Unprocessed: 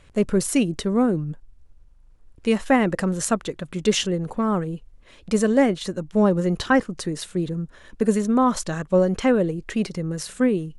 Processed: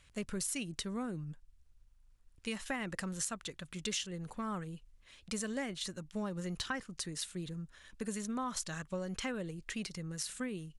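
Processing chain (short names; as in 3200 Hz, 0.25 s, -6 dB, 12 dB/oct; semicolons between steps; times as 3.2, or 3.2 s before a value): passive tone stack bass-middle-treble 5-5-5; compressor 6:1, threshold -36 dBFS, peak gain reduction 9 dB; gain +2 dB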